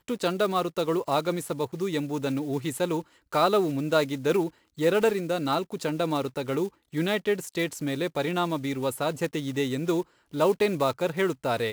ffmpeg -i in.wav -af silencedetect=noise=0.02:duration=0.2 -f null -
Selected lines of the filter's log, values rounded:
silence_start: 3.01
silence_end: 3.33 | silence_duration: 0.32
silence_start: 4.49
silence_end: 4.78 | silence_duration: 0.30
silence_start: 6.68
silence_end: 6.94 | silence_duration: 0.25
silence_start: 10.02
silence_end: 10.34 | silence_duration: 0.32